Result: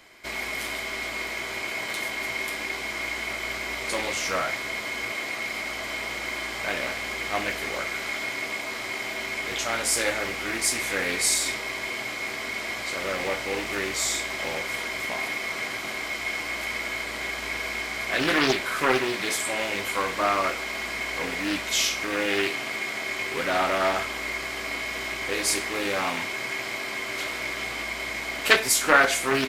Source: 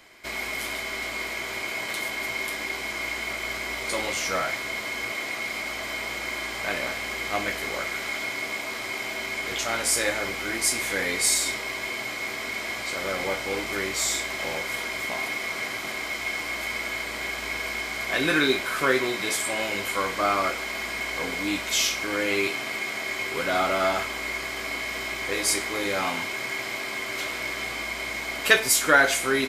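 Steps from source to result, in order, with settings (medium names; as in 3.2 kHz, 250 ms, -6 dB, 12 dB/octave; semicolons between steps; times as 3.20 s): loudspeaker Doppler distortion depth 0.45 ms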